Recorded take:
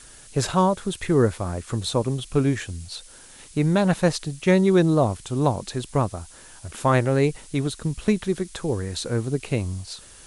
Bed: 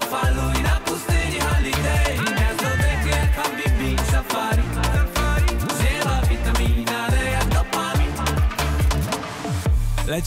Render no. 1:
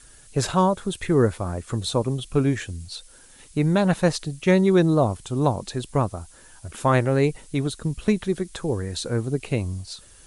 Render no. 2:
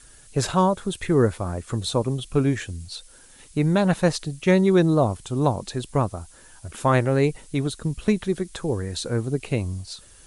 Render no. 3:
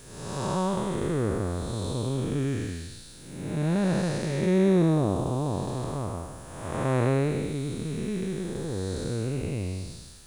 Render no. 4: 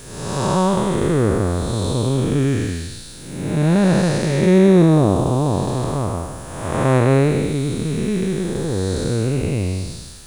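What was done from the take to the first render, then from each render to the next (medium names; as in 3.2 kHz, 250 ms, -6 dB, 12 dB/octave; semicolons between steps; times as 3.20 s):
noise reduction 6 dB, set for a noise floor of -47 dBFS
no audible change
spectral blur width 446 ms; bit crusher 10-bit
trim +10 dB; peak limiter -3 dBFS, peak gain reduction 2 dB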